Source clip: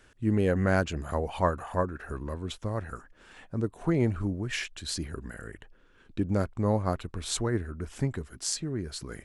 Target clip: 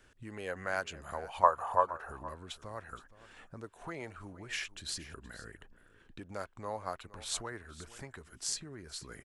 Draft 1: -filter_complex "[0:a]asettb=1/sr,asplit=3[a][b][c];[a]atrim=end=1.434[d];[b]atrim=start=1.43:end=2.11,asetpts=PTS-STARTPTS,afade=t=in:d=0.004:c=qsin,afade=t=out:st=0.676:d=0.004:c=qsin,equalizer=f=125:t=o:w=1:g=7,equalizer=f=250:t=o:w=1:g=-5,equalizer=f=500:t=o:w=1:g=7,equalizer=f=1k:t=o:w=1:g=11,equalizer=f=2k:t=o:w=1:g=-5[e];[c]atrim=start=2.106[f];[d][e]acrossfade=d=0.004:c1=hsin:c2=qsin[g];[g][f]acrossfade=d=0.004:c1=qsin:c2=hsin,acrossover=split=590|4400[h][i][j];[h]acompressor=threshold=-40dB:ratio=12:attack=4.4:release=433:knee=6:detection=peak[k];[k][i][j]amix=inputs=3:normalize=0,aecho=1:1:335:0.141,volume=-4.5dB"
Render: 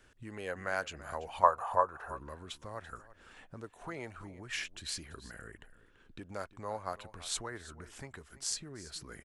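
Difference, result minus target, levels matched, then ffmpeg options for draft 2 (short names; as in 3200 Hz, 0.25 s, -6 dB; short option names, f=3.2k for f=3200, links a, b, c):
echo 0.134 s early
-filter_complex "[0:a]asettb=1/sr,asplit=3[a][b][c];[a]atrim=end=1.434[d];[b]atrim=start=1.43:end=2.11,asetpts=PTS-STARTPTS,afade=t=in:d=0.004:c=qsin,afade=t=out:st=0.676:d=0.004:c=qsin,equalizer=f=125:t=o:w=1:g=7,equalizer=f=250:t=o:w=1:g=-5,equalizer=f=500:t=o:w=1:g=7,equalizer=f=1k:t=o:w=1:g=11,equalizer=f=2k:t=o:w=1:g=-5[e];[c]atrim=start=2.106[f];[d][e]acrossfade=d=0.004:c1=hsin:c2=qsin[g];[g][f]acrossfade=d=0.004:c1=qsin:c2=hsin,acrossover=split=590|4400[h][i][j];[h]acompressor=threshold=-40dB:ratio=12:attack=4.4:release=433:knee=6:detection=peak[k];[k][i][j]amix=inputs=3:normalize=0,aecho=1:1:469:0.141,volume=-4.5dB"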